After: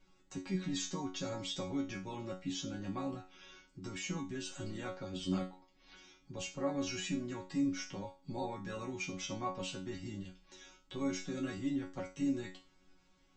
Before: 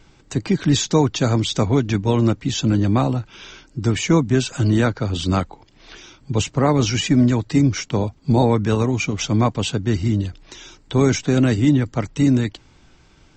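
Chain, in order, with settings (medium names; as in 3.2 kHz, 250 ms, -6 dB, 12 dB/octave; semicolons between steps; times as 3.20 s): peak limiter -11.5 dBFS, peak gain reduction 7 dB; chord resonator F#3 fifth, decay 0.32 s; trim -1 dB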